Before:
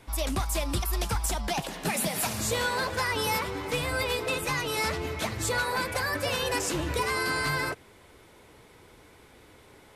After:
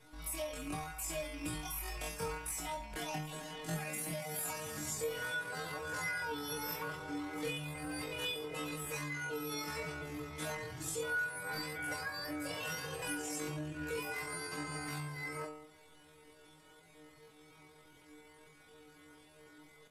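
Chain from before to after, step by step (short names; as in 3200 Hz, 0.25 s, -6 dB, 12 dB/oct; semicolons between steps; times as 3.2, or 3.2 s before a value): rattling part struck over -28 dBFS, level -26 dBFS; dynamic EQ 4200 Hz, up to -6 dB, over -47 dBFS, Q 1.3; metallic resonator 150 Hz, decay 0.31 s, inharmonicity 0.002; compressor 6:1, threshold -42 dBFS, peak gain reduction 8.5 dB; tempo 0.5×; doubler 24 ms -6.5 dB; gain +5.5 dB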